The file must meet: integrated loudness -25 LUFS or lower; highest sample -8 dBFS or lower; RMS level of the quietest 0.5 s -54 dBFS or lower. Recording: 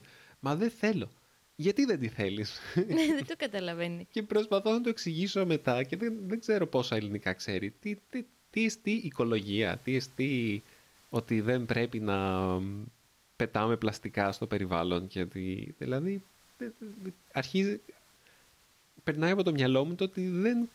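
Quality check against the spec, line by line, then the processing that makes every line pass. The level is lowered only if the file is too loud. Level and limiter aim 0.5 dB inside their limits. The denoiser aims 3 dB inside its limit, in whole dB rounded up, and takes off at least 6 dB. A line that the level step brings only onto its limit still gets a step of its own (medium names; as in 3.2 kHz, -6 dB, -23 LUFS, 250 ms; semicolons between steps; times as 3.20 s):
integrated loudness -32.0 LUFS: pass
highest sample -16.5 dBFS: pass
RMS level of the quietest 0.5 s -65 dBFS: pass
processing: none needed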